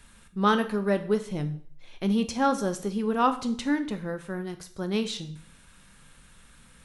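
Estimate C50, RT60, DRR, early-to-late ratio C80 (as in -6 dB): 13.0 dB, 0.55 s, 8.5 dB, 17.0 dB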